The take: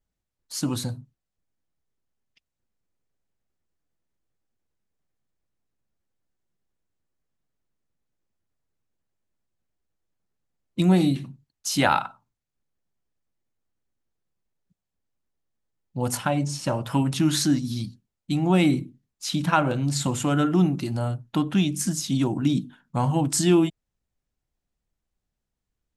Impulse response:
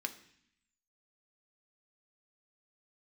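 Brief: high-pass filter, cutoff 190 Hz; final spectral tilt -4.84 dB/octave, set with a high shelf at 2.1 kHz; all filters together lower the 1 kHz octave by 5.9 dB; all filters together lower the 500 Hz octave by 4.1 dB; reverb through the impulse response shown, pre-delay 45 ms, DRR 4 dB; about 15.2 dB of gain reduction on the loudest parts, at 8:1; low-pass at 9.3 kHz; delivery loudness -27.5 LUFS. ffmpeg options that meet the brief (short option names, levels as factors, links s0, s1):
-filter_complex "[0:a]highpass=190,lowpass=9300,equalizer=f=500:t=o:g=-4.5,equalizer=f=1000:t=o:g=-4.5,highshelf=f=2100:g=-8,acompressor=threshold=0.0178:ratio=8,asplit=2[s0][s1];[1:a]atrim=start_sample=2205,adelay=45[s2];[s1][s2]afir=irnorm=-1:irlink=0,volume=0.596[s3];[s0][s3]amix=inputs=2:normalize=0,volume=3.55"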